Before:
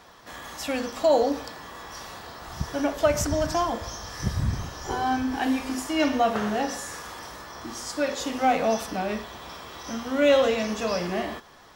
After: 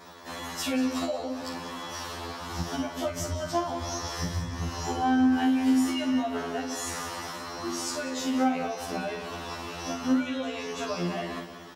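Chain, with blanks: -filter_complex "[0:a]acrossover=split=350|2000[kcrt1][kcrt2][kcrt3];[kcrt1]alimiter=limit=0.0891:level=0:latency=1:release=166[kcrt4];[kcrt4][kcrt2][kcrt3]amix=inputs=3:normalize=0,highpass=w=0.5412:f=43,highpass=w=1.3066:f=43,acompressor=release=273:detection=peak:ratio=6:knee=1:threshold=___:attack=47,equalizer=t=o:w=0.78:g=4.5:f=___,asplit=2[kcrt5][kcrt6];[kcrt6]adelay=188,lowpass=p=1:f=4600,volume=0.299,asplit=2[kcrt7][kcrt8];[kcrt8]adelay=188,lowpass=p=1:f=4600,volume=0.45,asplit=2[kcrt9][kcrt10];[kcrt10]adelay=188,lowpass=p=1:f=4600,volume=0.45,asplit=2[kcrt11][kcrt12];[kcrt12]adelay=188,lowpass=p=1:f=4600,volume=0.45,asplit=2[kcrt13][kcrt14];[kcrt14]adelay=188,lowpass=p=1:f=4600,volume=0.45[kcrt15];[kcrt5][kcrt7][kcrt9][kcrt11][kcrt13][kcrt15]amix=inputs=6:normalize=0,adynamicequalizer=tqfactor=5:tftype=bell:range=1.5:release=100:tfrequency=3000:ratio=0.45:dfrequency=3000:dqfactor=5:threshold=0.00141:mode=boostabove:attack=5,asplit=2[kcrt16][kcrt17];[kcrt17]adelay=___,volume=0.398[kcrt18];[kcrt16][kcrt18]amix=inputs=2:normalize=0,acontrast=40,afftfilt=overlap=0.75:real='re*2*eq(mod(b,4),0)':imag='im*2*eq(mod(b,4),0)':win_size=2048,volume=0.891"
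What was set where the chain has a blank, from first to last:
0.02, 270, 47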